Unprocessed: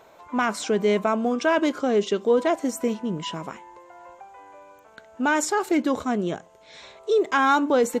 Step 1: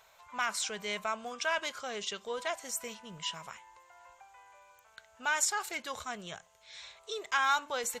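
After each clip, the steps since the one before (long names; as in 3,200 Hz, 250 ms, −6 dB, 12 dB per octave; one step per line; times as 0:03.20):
guitar amp tone stack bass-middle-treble 10-0-10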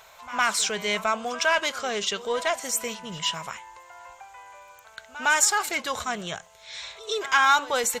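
in parallel at −9 dB: soft clipping −33.5 dBFS, distortion −6 dB
on the sum: echo ahead of the sound 109 ms −17 dB
level +8 dB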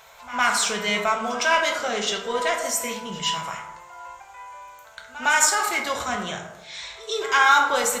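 dense smooth reverb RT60 0.93 s, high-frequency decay 0.45×, DRR 0.5 dB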